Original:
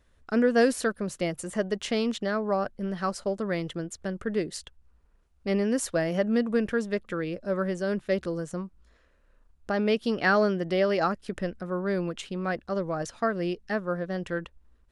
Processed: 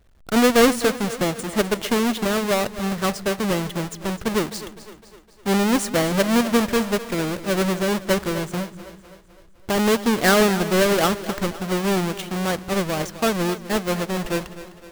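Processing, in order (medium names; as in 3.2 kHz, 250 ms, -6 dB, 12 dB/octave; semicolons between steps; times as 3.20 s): square wave that keeps the level; two-band feedback delay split 300 Hz, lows 179 ms, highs 255 ms, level -14 dB; trim +2 dB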